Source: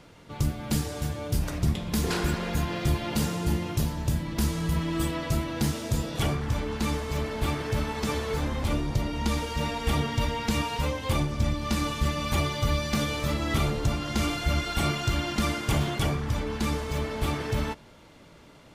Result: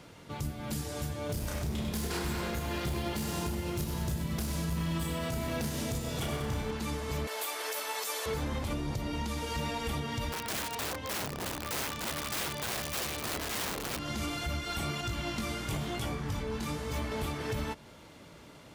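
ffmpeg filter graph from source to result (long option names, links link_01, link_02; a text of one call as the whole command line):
ffmpeg -i in.wav -filter_complex "[0:a]asettb=1/sr,asplit=3[link_01][link_02][link_03];[link_01]atrim=end=1.264[link_04];[link_02]atrim=start=1.26:end=6.71,asetpts=PTS-STARTPTS,afade=type=in:duration=0.004:curve=qsin,afade=type=out:start_time=5.446:duration=0.004:curve=qsin,asoftclip=type=hard:threshold=-21.5dB,asplit=2[link_05][link_06];[link_06]adelay=32,volume=-2.5dB[link_07];[link_05][link_07]amix=inputs=2:normalize=0,atrim=end_sample=240345,aecho=1:1:97|194|291|388|485|582|679:0.422|0.236|0.132|0.0741|0.0415|0.0232|0.013,atrim=end_sample=240345[link_08];[link_03]atrim=start=6.706[link_09];[link_04][link_08]acrossfade=duration=0.004:curve1=hsin:curve2=qsin[link_10];[link_10][link_09]acrossfade=duration=0.004:curve1=qsin:curve2=hsin,asettb=1/sr,asplit=3[link_11][link_12][link_13];[link_11]atrim=end=7.274[link_14];[link_12]atrim=start=7.27:end=8.26,asetpts=PTS-STARTPTS,afade=type=in:duration=0.004:curve=qsin,afade=type=out:start_time=0.986:duration=0.004:curve=qsin,highpass=frequency=480:width=0.5412,highpass=frequency=480:width=1.3066,aemphasis=mode=production:type=50kf[link_15];[link_13]atrim=start=8.256[link_16];[link_14][link_15]acrossfade=duration=0.004:curve1=hsin:curve2=qsin[link_17];[link_17][link_16]acrossfade=duration=0.004:curve1=qsin:curve2=hsin,asettb=1/sr,asplit=3[link_18][link_19][link_20];[link_18]atrim=end=10.324[link_21];[link_19]atrim=start=10.32:end=13.99,asetpts=PTS-STARTPTS,afade=type=in:duration=0.004:curve=qsin,afade=type=out:start_time=3.666:duration=0.004:curve=qsin,highshelf=frequency=5600:gain=-11.5,aeval=exprs='(mod(16.8*val(0)+1,2)-1)/16.8':channel_layout=same[link_22];[link_20]atrim=start=13.986[link_23];[link_21][link_22]acrossfade=duration=0.004:curve1=hsin:curve2=qsin[link_24];[link_24][link_23]acrossfade=duration=0.004:curve1=qsin:curve2=hsin,asettb=1/sr,asplit=3[link_25][link_26][link_27];[link_25]atrim=end=15.014[link_28];[link_26]atrim=start=15.01:end=17.12,asetpts=PTS-STARTPTS,afade=type=in:duration=0.004:curve=qsin,afade=type=out:start_time=2.106:duration=0.004:curve=qsin,flanger=delay=17:depth=5.6:speed=1,aeval=exprs='val(0)+0.0112*(sin(2*PI*60*n/s)+sin(2*PI*2*60*n/s)/2+sin(2*PI*3*60*n/s)/3+sin(2*PI*4*60*n/s)/4+sin(2*PI*5*60*n/s)/5)':channel_layout=same[link_29];[link_27]atrim=start=17.116[link_30];[link_28][link_29]acrossfade=duration=0.004:curve1=hsin:curve2=qsin[link_31];[link_31][link_30]acrossfade=duration=0.004:curve1=qsin:curve2=hsin,highpass=47,highshelf=frequency=7700:gain=5,alimiter=level_in=0.5dB:limit=-24dB:level=0:latency=1:release=257,volume=-0.5dB" out.wav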